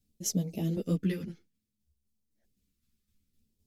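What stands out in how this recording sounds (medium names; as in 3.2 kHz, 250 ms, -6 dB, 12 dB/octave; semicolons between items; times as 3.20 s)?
phasing stages 2, 0.59 Hz, lowest notch 630–1500 Hz; tremolo saw down 3.9 Hz, depth 45%; a shimmering, thickened sound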